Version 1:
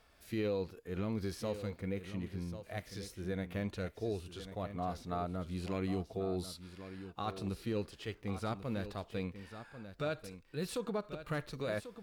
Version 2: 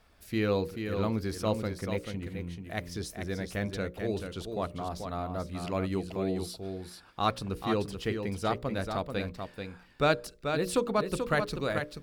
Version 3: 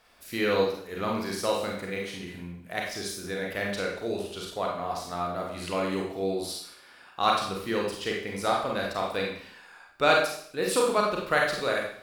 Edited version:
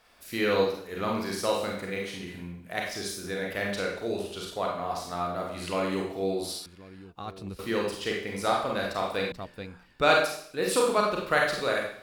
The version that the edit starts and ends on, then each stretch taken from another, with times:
3
6.66–7.59 s: from 1
9.32–10.02 s: from 2

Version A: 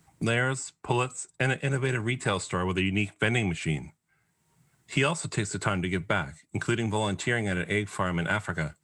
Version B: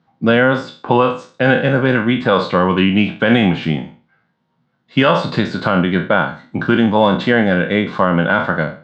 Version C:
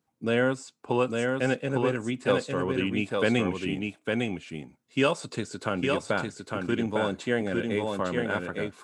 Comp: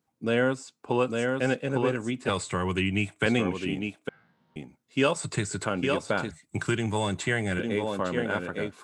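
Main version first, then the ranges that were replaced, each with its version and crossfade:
C
2.29–3.26 s: from A
4.09–4.56 s: from B
5.16–5.65 s: from A
6.31–7.59 s: from A

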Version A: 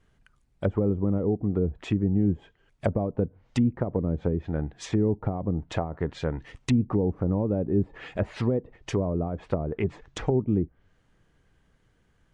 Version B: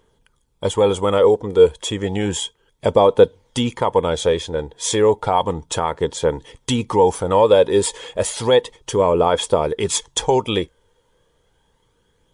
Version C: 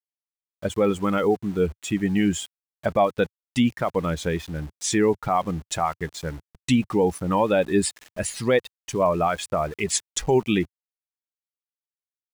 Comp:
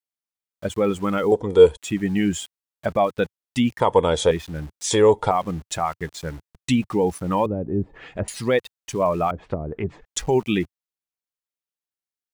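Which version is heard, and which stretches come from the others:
C
1.32–1.77 s: from B
3.80–4.31 s: from B
4.91–5.31 s: from B
7.46–8.28 s: from A
9.31–10.05 s: from A

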